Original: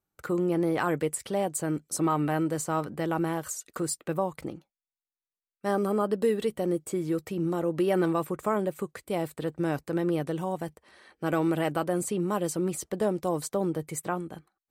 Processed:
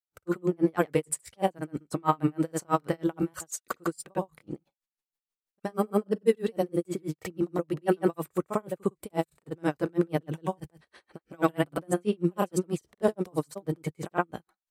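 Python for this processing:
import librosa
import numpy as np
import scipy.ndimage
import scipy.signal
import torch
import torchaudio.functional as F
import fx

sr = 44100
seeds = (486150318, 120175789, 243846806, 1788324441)

y = fx.granulator(x, sr, seeds[0], grain_ms=100.0, per_s=20.0, spray_ms=100.0, spread_st=0)
y = y * 10.0 ** (-37 * (0.5 - 0.5 * np.cos(2.0 * np.pi * 6.2 * np.arange(len(y)) / sr)) / 20.0)
y = y * 10.0 ** (7.5 / 20.0)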